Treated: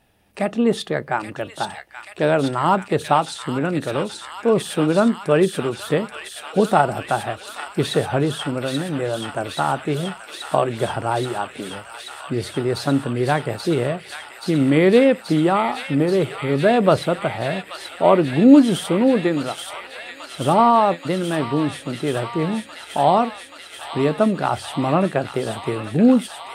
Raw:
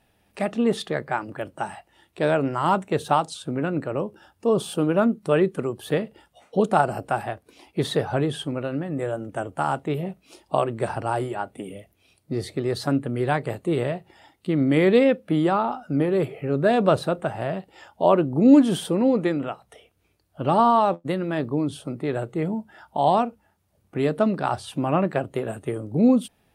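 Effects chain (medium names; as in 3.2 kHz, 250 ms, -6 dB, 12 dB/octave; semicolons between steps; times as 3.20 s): feedback echo behind a high-pass 830 ms, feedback 85%, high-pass 2.1 kHz, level -3.5 dB; trim +3.5 dB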